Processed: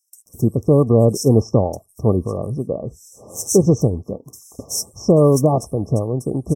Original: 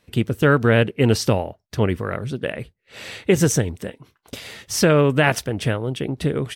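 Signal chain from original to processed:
linear-phase brick-wall band-stop 1,200–5,200 Hz
parametric band 960 Hz −11 dB 0.24 octaves
multiband delay without the direct sound highs, lows 260 ms, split 4,300 Hz
level +3.5 dB

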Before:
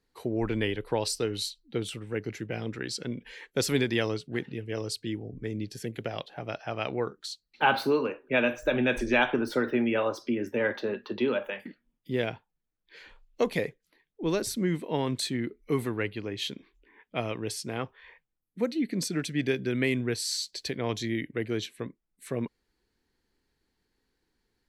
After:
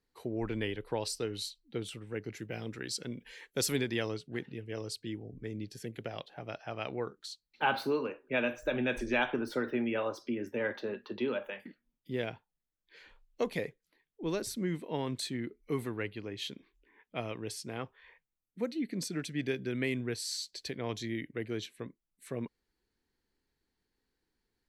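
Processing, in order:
0:02.36–0:03.76: high-shelf EQ 5,900 Hz +9.5 dB
level −6 dB

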